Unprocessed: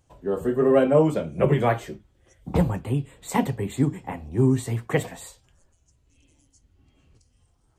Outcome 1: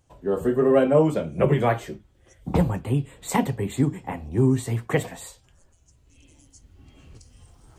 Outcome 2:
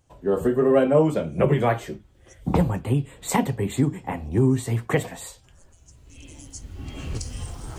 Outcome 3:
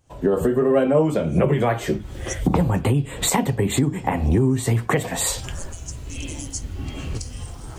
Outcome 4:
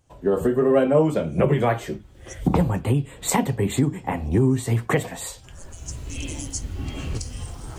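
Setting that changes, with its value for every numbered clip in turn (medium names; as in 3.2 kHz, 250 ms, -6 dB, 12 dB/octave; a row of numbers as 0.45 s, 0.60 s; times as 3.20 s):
recorder AGC, rising by: 5.1 dB/s, 13 dB/s, 79 dB/s, 32 dB/s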